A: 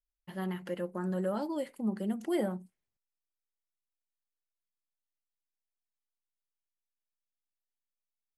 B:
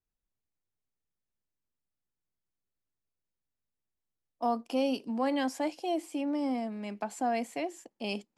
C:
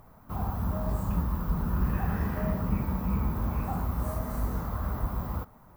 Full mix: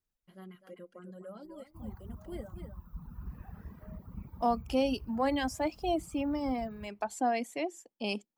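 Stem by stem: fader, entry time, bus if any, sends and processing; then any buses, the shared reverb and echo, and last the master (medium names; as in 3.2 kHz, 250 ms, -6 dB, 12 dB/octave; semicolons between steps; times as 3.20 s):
-12.0 dB, 0.00 s, no send, echo send -5.5 dB, comb of notches 880 Hz
+1.5 dB, 0.00 s, no send, no echo send, none
-19.5 dB, 1.45 s, no send, echo send -14.5 dB, bass shelf 240 Hz +7 dB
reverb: none
echo: delay 252 ms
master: reverb removal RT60 1.8 s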